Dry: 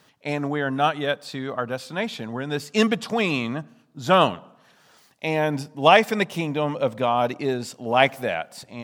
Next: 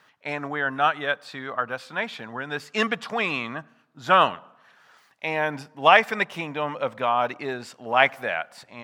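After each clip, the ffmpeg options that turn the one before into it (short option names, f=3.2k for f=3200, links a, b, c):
-af "equalizer=f=1.5k:t=o:w=2.4:g=14,volume=-10dB"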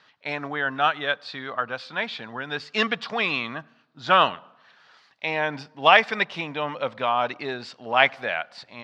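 -af "lowpass=f=4.4k:t=q:w=2.2,volume=-1dB"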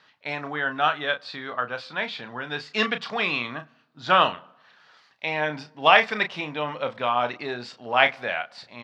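-filter_complex "[0:a]asplit=2[a][b];[b]adelay=33,volume=-9dB[c];[a][c]amix=inputs=2:normalize=0,volume=-1dB"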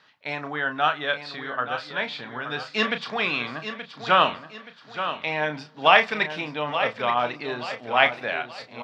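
-af "aecho=1:1:876|1752|2628|3504:0.316|0.12|0.0457|0.0174"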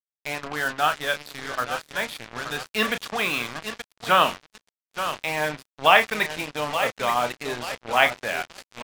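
-af "acrusher=bits=4:mix=0:aa=0.5"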